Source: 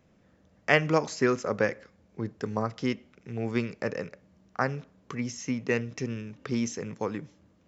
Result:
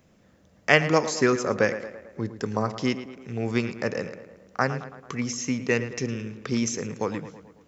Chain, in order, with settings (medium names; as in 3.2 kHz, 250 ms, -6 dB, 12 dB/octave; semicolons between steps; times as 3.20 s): treble shelf 4.8 kHz +8 dB; tape echo 111 ms, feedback 60%, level -11 dB, low-pass 2.9 kHz; trim +3 dB